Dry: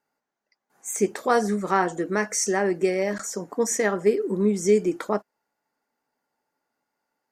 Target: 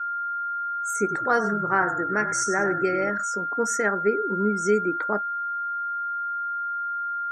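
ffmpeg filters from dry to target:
ffmpeg -i in.wav -filter_complex "[0:a]dynaudnorm=framelen=190:gausssize=3:maxgain=5dB,aeval=exprs='val(0)+0.0501*sin(2*PI*1400*n/s)':channel_layout=same,asettb=1/sr,asplit=3[link_01][link_02][link_03];[link_01]atrim=end=0.994[link_04];[link_02]atrim=start=0.99:end=3.1,asetpts=PTS-STARTPTS,afade=type=in:duration=0.004:curve=qsin,afade=type=out:start_time=2.106:duration=0.004:curve=qsin,asplit=5[link_05][link_06][link_07][link_08][link_09];[link_06]adelay=97,afreqshift=-40,volume=-10dB[link_10];[link_07]adelay=194,afreqshift=-80,volume=-18.4dB[link_11];[link_08]adelay=291,afreqshift=-120,volume=-26.8dB[link_12];[link_09]adelay=388,afreqshift=-160,volume=-35.2dB[link_13];[link_05][link_10][link_11][link_12][link_13]amix=inputs=5:normalize=0,atrim=end_sample=93051[link_14];[link_03]atrim=start=3.096[link_15];[link_04][link_14]acrossfade=duration=0.004:curve1=hsin:curve2=qsin[link_16];[link_16][link_15]acrossfade=duration=0.004:curve1=qsin:curve2=hsin,afftdn=noise_reduction=31:noise_floor=-34,equalizer=frequency=1500:width=4:gain=10,volume=-7.5dB" out.wav

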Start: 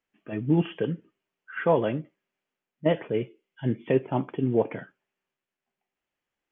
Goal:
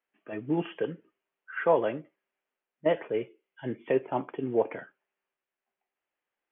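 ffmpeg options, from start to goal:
ffmpeg -i in.wav -filter_complex "[0:a]acrossover=split=330 3100:gain=0.224 1 0.158[link_01][link_02][link_03];[link_01][link_02][link_03]amix=inputs=3:normalize=0" out.wav

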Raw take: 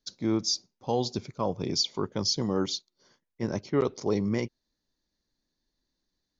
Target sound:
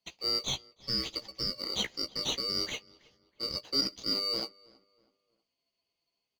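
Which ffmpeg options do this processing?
ffmpeg -i in.wav -filter_complex "[0:a]afftfilt=real='real(if(lt(b,272),68*(eq(floor(b/68),0)*1+eq(floor(b/68),1)*2+eq(floor(b/68),2)*3+eq(floor(b/68),3)*0)+mod(b,68),b),0)':imag='imag(if(lt(b,272),68*(eq(floor(b/68),0)*1+eq(floor(b/68),1)*2+eq(floor(b/68),2)*3+eq(floor(b/68),3)*0)+mod(b,68),b),0)':win_size=2048:overlap=0.75,asplit=2[link_01][link_02];[link_02]acrusher=samples=26:mix=1:aa=0.000001,volume=-7dB[link_03];[link_01][link_03]amix=inputs=2:normalize=0,asplit=2[link_04][link_05];[link_05]adelay=15,volume=-7.5dB[link_06];[link_04][link_06]amix=inputs=2:normalize=0,asplit=2[link_07][link_08];[link_08]adelay=322,lowpass=frequency=2700:poles=1,volume=-23dB,asplit=2[link_09][link_10];[link_10]adelay=322,lowpass=frequency=2700:poles=1,volume=0.39,asplit=2[link_11][link_12];[link_12]adelay=322,lowpass=frequency=2700:poles=1,volume=0.39[link_13];[link_07][link_09][link_11][link_13]amix=inputs=4:normalize=0,volume=-6.5dB" out.wav

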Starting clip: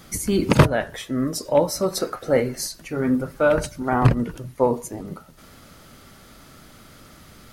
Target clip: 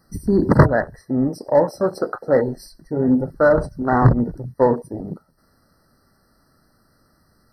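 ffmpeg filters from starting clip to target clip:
ffmpeg -i in.wav -filter_complex "[0:a]asettb=1/sr,asplit=3[link_01][link_02][link_03];[link_01]atrim=end=1.294[link_04];[link_02]atrim=start=1.29:end=2.48,asetpts=PTS-STARTPTS,afade=type=in:duration=0.004:curve=qsin,afade=type=out:start_time=1.186:duration=0.004:curve=qsin,lowshelf=frequency=240:gain=-5[link_05];[link_03]atrim=start=2.476[link_06];[link_04][link_05]acrossfade=duration=0.004:curve1=hsin:curve2=qsin[link_07];[link_07][link_06]acrossfade=duration=0.004:curve1=qsin:curve2=hsin,afwtdn=0.0355,asplit=2[link_08][link_09];[link_09]asoftclip=type=hard:threshold=-14dB,volume=-4dB[link_10];[link_08][link_10]amix=inputs=2:normalize=0,afftfilt=real='re*eq(mod(floor(b*sr/1024/2000),2),0)':imag='im*eq(mod(floor(b*sr/1024/2000),2),0)':win_size=1024:overlap=0.75" out.wav

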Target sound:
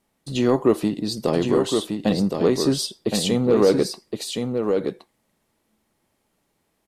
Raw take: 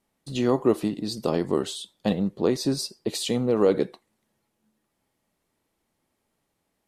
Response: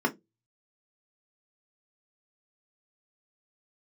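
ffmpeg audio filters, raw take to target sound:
-af "acontrast=87,aecho=1:1:1067:0.562,volume=-3dB"

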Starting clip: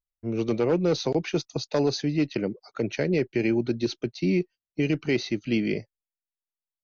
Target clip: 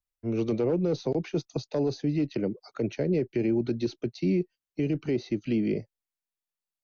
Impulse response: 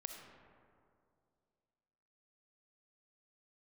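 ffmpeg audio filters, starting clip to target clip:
-filter_complex "[0:a]acrossover=split=200|740[link_01][link_02][link_03];[link_03]acompressor=threshold=-43dB:ratio=6[link_04];[link_01][link_02][link_04]amix=inputs=3:normalize=0,alimiter=limit=-18dB:level=0:latency=1:release=18"

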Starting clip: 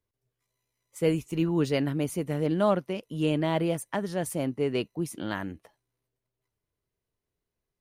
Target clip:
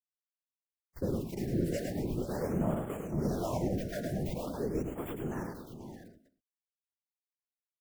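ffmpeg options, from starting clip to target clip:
ffmpeg -i in.wav -filter_complex "[0:a]agate=range=-11dB:threshold=-50dB:ratio=16:detection=peak,bandreject=frequency=135.5:width_type=h:width=4,bandreject=frequency=271:width_type=h:width=4,bandreject=frequency=406.5:width_type=h:width=4,bandreject=frequency=542:width_type=h:width=4,bandreject=frequency=677.5:width_type=h:width=4,bandreject=frequency=813:width_type=h:width=4,bandreject=frequency=948.5:width_type=h:width=4,bandreject=frequency=1084:width_type=h:width=4,bandreject=frequency=1219.5:width_type=h:width=4,bandreject=frequency=1355:width_type=h:width=4,acrossover=split=160|3000[link_01][link_02][link_03];[link_02]acompressor=threshold=-36dB:ratio=1.5[link_04];[link_01][link_04][link_03]amix=inputs=3:normalize=0,asplit=2[link_05][link_06];[link_06]aeval=exprs='(mod(25.1*val(0)+1,2)-1)/25.1':channel_layout=same,volume=-9dB[link_07];[link_05][link_07]amix=inputs=2:normalize=0,acrusher=bits=10:mix=0:aa=0.000001,acrossover=split=490|1900[link_08][link_09][link_10];[link_10]aeval=exprs='abs(val(0))':channel_layout=same[link_11];[link_08][link_09][link_11]amix=inputs=3:normalize=0,acrossover=split=400[link_12][link_13];[link_12]aeval=exprs='val(0)*(1-0.7/2+0.7/2*cos(2*PI*1.9*n/s))':channel_layout=same[link_14];[link_13]aeval=exprs='val(0)*(1-0.7/2-0.7/2*cos(2*PI*1.9*n/s))':channel_layout=same[link_15];[link_14][link_15]amix=inputs=2:normalize=0,afftfilt=real='hypot(re,im)*cos(2*PI*random(0))':imag='hypot(re,im)*sin(2*PI*random(1))':win_size=512:overlap=0.75,aecho=1:1:106|487|607:0.531|0.299|0.299,afftfilt=real='re*(1-between(b*sr/1024,980*pow(5000/980,0.5+0.5*sin(2*PI*0.44*pts/sr))/1.41,980*pow(5000/980,0.5+0.5*sin(2*PI*0.44*pts/sr))*1.41))':imag='im*(1-between(b*sr/1024,980*pow(5000/980,0.5+0.5*sin(2*PI*0.44*pts/sr))/1.41,980*pow(5000/980,0.5+0.5*sin(2*PI*0.44*pts/sr))*1.41))':win_size=1024:overlap=0.75,volume=5dB" out.wav

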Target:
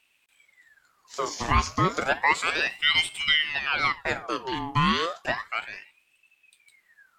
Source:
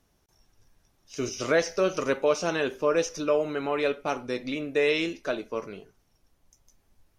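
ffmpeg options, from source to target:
ffmpeg -i in.wav -filter_complex "[0:a]asettb=1/sr,asplit=3[link_01][link_02][link_03];[link_01]atrim=end=2.424[link_04];[link_02]atrim=start=2.42:end=3.89,asetpts=PTS-STARTPTS,afade=type=in:duration=0.004:curve=qsin,afade=type=out:start_time=1.466:duration=0.004:curve=qsin,bandreject=frequency=3800:width=6.2[link_05];[link_03]atrim=start=3.886[link_06];[link_04][link_05]acrossfade=duration=0.004:curve1=hsin:curve2=qsin[link_07];[link_07][link_06]acrossfade=duration=0.004:curve1=qsin:curve2=hsin,aeval=exprs='val(0)*sin(2*PI*1600*n/s+1600*0.65/0.32*sin(2*PI*0.32*n/s))':channel_layout=same,volume=4dB" out.wav

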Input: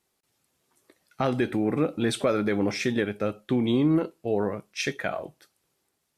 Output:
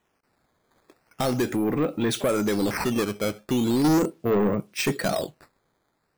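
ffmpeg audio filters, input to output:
ffmpeg -i in.wav -filter_complex "[0:a]asettb=1/sr,asplit=3[link_01][link_02][link_03];[link_01]atrim=end=3.844[link_04];[link_02]atrim=start=3.84:end=5.25,asetpts=PTS-STARTPTS,afade=type=in:duration=0.004:curve=qsin,afade=type=out:start_time=1.406:duration=0.004:curve=qsin,equalizer=frequency=200:width=0.45:gain=10.5[link_05];[link_03]atrim=start=5.246[link_06];[link_04][link_05]acrossfade=duration=0.004:curve1=hsin:curve2=qsin[link_07];[link_07][link_06]acrossfade=duration=0.004:curve1=qsin:curve2=hsin,acrusher=samples=9:mix=1:aa=0.000001:lfo=1:lforange=14.4:lforate=0.39,asoftclip=type=tanh:threshold=-20.5dB,volume=3.5dB" out.wav

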